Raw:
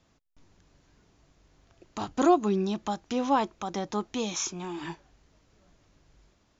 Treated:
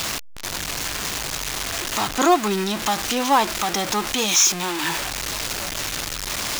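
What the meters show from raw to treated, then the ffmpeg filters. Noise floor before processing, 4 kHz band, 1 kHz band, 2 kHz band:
-68 dBFS, +18.5 dB, +8.5 dB, +18.0 dB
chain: -af "aeval=exprs='val(0)+0.5*0.0376*sgn(val(0))':c=same,tiltshelf=f=750:g=-7,volume=1.88"

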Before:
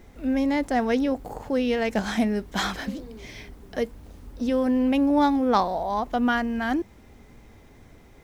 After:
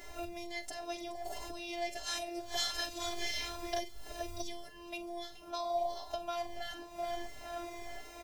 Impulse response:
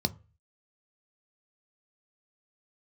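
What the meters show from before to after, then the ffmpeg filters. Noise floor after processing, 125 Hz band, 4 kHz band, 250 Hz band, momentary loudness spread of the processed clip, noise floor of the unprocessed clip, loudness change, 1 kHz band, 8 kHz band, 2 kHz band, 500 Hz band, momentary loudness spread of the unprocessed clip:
-50 dBFS, -17.5 dB, -2.0 dB, -24.0 dB, 9 LU, -51 dBFS, -15.0 dB, -12.5 dB, +1.0 dB, -11.5 dB, -12.5 dB, 14 LU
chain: -filter_complex "[0:a]highpass=43,highshelf=f=5700:g=-7,asplit=2[s0][s1];[s1]adelay=44,volume=0.266[s2];[s0][s2]amix=inputs=2:normalize=0,aecho=1:1:424|848|1272:0.178|0.0676|0.0257,acompressor=threshold=0.02:ratio=6,bandreject=f=50:t=h:w=6,bandreject=f=100:t=h:w=6,bandreject=f=150:t=h:w=6,bandreject=f=200:t=h:w=6,bandreject=f=250:t=h:w=6,acrossover=split=170|3000[s3][s4][s5];[s4]acompressor=threshold=0.00501:ratio=6[s6];[s3][s6][s5]amix=inputs=3:normalize=0,firequalizer=gain_entry='entry(150,0);entry(210,-16);entry(530,8);entry(1400,-2);entry(2400,3);entry(5100,8)':delay=0.05:min_phase=1,afftfilt=real='hypot(re,im)*cos(PI*b)':imag='0':win_size=512:overlap=0.75,asplit=2[s7][s8];[s8]adelay=4.8,afreqshift=1.5[s9];[s7][s9]amix=inputs=2:normalize=1,volume=4.22"

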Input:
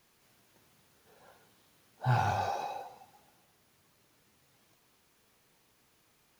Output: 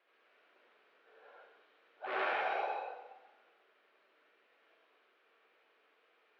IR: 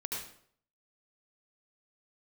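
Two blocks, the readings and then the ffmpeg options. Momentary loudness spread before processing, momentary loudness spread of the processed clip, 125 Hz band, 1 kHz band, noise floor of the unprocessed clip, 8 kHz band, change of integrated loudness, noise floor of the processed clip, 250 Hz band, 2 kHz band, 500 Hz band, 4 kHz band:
15 LU, 14 LU, under -40 dB, -4.0 dB, -69 dBFS, under -20 dB, -4.5 dB, -72 dBFS, -9.5 dB, +2.5 dB, +1.0 dB, -1.5 dB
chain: -filter_complex "[0:a]aeval=exprs='0.0335*(abs(mod(val(0)/0.0335+3,4)-2)-1)':c=same,highpass=f=390:w=0.5412,highpass=f=390:w=1.3066,equalizer=f=610:t=q:w=4:g=3,equalizer=f=930:t=q:w=4:g=-6,equalizer=f=1400:t=q:w=4:g=4,lowpass=f=3000:w=0.5412,lowpass=f=3000:w=1.3066[s0];[1:a]atrim=start_sample=2205[s1];[s0][s1]afir=irnorm=-1:irlink=0"

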